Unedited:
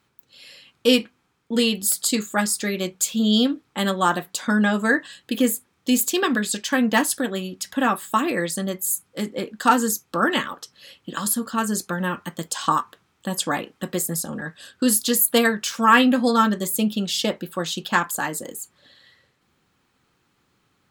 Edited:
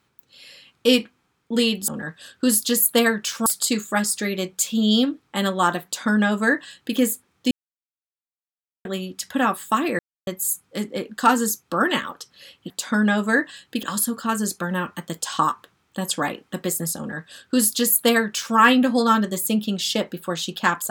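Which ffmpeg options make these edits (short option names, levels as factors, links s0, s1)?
-filter_complex "[0:a]asplit=9[s0][s1][s2][s3][s4][s5][s6][s7][s8];[s0]atrim=end=1.882[s9];[s1]atrim=start=14.268:end=15.852[s10];[s2]atrim=start=1.878:end=5.93,asetpts=PTS-STARTPTS,afade=t=out:st=4.048:d=0.004:c=hsin[s11];[s3]atrim=start=5.93:end=7.27,asetpts=PTS-STARTPTS,volume=0[s12];[s4]atrim=start=7.27:end=8.41,asetpts=PTS-STARTPTS,afade=t=in:d=0.004:c=hsin,afade=t=out:st=1.136:d=0.004:c=hsin[s13];[s5]atrim=start=8.41:end=8.69,asetpts=PTS-STARTPTS,volume=0[s14];[s6]atrim=start=8.69:end=11.122,asetpts=PTS-STARTPTS,afade=t=in:d=0.004:c=hsin[s15];[s7]atrim=start=4.258:end=5.392[s16];[s8]atrim=start=11.118[s17];[s9][s10]acrossfade=d=0.004:c1=hsin:c2=hsin[s18];[s11][s12][s13][s14][s15]concat=n=5:v=0:a=1[s19];[s18][s19]acrossfade=d=0.004:c1=hsin:c2=hsin[s20];[s20][s16]acrossfade=d=0.004:c1=hsin:c2=hsin[s21];[s21][s17]acrossfade=d=0.004:c1=hsin:c2=hsin"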